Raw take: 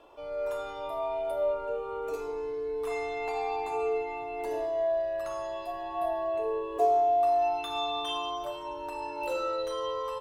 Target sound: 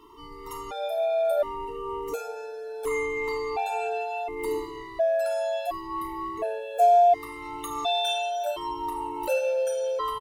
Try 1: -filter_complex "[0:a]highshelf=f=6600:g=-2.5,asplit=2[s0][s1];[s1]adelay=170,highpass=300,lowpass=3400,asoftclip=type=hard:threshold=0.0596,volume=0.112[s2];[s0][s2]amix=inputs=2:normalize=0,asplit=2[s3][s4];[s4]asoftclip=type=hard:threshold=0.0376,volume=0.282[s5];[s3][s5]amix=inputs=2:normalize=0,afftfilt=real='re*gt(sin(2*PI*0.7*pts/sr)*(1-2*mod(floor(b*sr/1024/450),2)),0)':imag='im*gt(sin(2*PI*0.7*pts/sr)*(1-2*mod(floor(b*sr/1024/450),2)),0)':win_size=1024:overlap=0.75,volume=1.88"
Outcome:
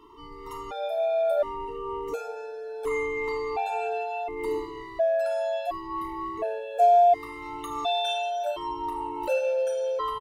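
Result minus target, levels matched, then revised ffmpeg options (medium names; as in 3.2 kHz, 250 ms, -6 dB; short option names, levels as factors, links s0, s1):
8 kHz band -6.0 dB
-filter_complex "[0:a]highshelf=f=6600:g=9,asplit=2[s0][s1];[s1]adelay=170,highpass=300,lowpass=3400,asoftclip=type=hard:threshold=0.0596,volume=0.112[s2];[s0][s2]amix=inputs=2:normalize=0,asplit=2[s3][s4];[s4]asoftclip=type=hard:threshold=0.0376,volume=0.282[s5];[s3][s5]amix=inputs=2:normalize=0,afftfilt=real='re*gt(sin(2*PI*0.7*pts/sr)*(1-2*mod(floor(b*sr/1024/450),2)),0)':imag='im*gt(sin(2*PI*0.7*pts/sr)*(1-2*mod(floor(b*sr/1024/450),2)),0)':win_size=1024:overlap=0.75,volume=1.88"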